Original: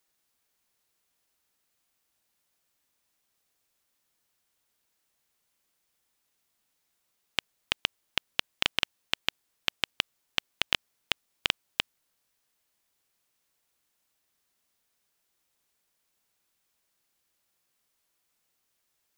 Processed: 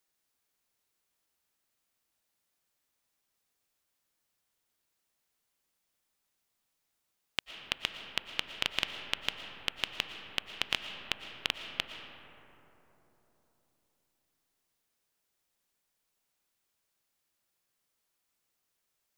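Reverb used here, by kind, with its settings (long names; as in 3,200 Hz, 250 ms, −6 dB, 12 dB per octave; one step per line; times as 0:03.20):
comb and all-pass reverb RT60 3.9 s, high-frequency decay 0.3×, pre-delay 75 ms, DRR 6.5 dB
level −4.5 dB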